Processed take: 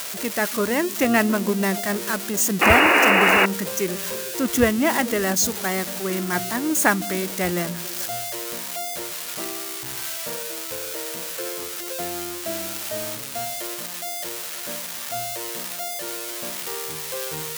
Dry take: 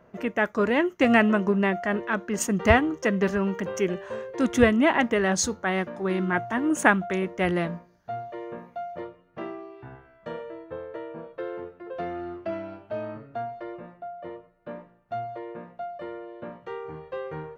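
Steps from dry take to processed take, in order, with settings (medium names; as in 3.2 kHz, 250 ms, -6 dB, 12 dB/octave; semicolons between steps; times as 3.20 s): zero-crossing glitches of -16 dBFS; repeats whose band climbs or falls 147 ms, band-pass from 160 Hz, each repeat 0.7 oct, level -11 dB; painted sound noise, 2.61–3.46 s, 270–2900 Hz -16 dBFS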